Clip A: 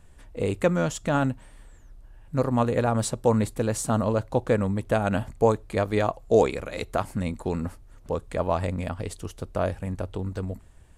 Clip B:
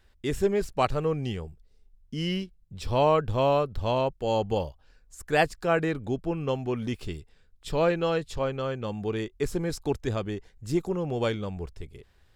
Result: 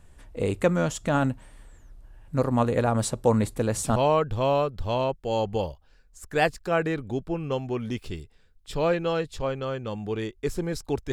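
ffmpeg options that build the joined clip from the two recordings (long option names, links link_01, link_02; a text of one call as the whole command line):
ffmpeg -i cue0.wav -i cue1.wav -filter_complex "[1:a]asplit=2[link_01][link_02];[0:a]apad=whole_dur=11.12,atrim=end=11.12,atrim=end=3.962[link_03];[link_02]atrim=start=2.928:end=10.09[link_04];[link_01]atrim=start=2.5:end=2.93,asetpts=PTS-STARTPTS,volume=-6dB,afade=type=in:duration=0.004:curve=hsin,afade=type=out:start_time=0.426:duration=0.004:curve=hsin,adelay=155673S[link_05];[link_03][link_04]acrossfade=duration=0.004:curve1=hsin:curve2=hsin[link_06];[link_06][link_05]amix=inputs=2:normalize=0" out.wav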